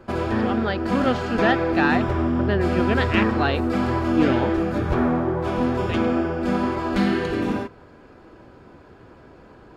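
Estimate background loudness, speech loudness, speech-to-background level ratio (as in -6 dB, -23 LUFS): -23.0 LUFS, -25.5 LUFS, -2.5 dB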